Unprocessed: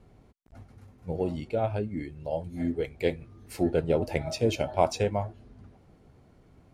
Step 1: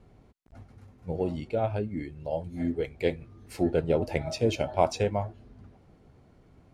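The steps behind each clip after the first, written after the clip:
high-shelf EQ 12,000 Hz −9.5 dB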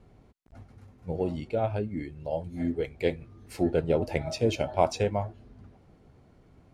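no processing that can be heard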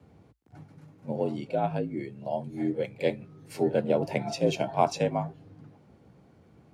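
echo ahead of the sound 43 ms −19.5 dB
frequency shifter +54 Hz

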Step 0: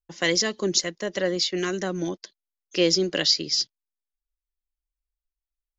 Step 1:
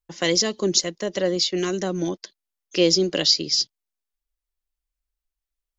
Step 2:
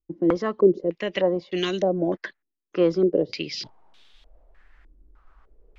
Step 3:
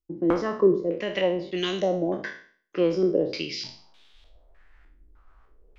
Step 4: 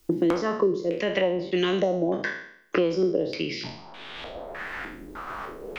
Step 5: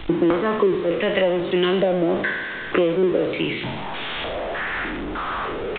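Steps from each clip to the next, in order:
dynamic equaliser 1,700 Hz, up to −7 dB, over −42 dBFS, Q 1.5; level +3 dB
reversed playback; upward compression, threshold −23 dBFS; reversed playback; low-pass on a step sequencer 3.3 Hz 320–3,500 Hz; level −2 dB
peak hold with a decay on every bin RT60 0.48 s; level −3 dB
multiband upward and downward compressor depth 100%
converter with a step at zero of −27 dBFS; downsampling to 8,000 Hz; level +2.5 dB

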